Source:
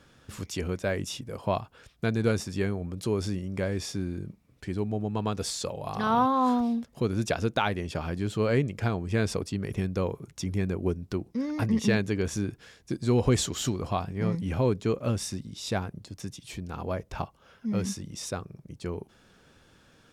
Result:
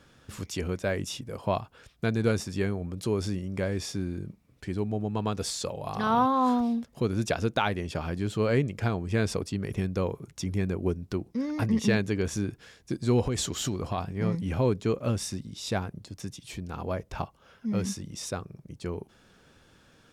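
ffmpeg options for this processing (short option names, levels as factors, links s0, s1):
-filter_complex "[0:a]asettb=1/sr,asplit=3[s0][s1][s2];[s0]atrim=end=13.254[s3];[s1]atrim=start=13.25:end=13.98,asetpts=PTS-STARTPTS,afade=t=in:d=0.004:c=qsin,afade=t=out:st=0.726:d=0.004:c=qsin,acompressor=threshold=0.0631:ratio=10:attack=3.2:release=140:knee=1:detection=peak[s4];[s2]atrim=start=13.976[s5];[s3][s4]acrossfade=d=0.004:c1=hsin:c2=qsin[s6];[s6][s5]acrossfade=d=0.004:c1=qsin:c2=hsin"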